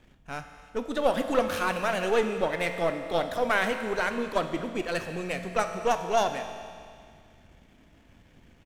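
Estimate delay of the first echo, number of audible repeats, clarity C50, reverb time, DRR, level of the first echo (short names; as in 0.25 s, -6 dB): 0.222 s, 1, 7.5 dB, 2.2 s, 6.0 dB, -20.5 dB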